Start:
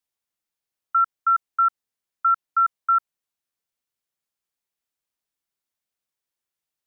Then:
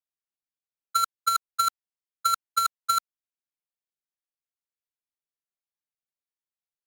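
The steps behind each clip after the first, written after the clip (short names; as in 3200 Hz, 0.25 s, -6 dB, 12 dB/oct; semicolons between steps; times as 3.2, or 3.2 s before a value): half-waves squared off; gate -16 dBFS, range -31 dB; negative-ratio compressor -25 dBFS, ratio -0.5; gain +5.5 dB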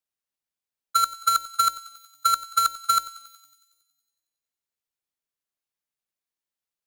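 thinning echo 92 ms, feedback 69%, high-pass 1100 Hz, level -16.5 dB; gain +3 dB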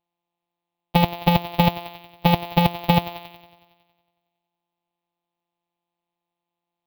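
sample sorter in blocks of 256 samples; EQ curve 500 Hz 0 dB, 770 Hz +14 dB, 1500 Hz -9 dB, 2500 Hz +8 dB, 3800 Hz +7 dB, 7600 Hz -23 dB, 15000 Hz +9 dB; gain +2.5 dB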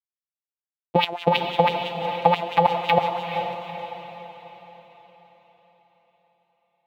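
bit-crush 7-bit; LFO band-pass sine 6 Hz 410–3300 Hz; diffused feedback echo 0.458 s, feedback 47%, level -7 dB; gain +8 dB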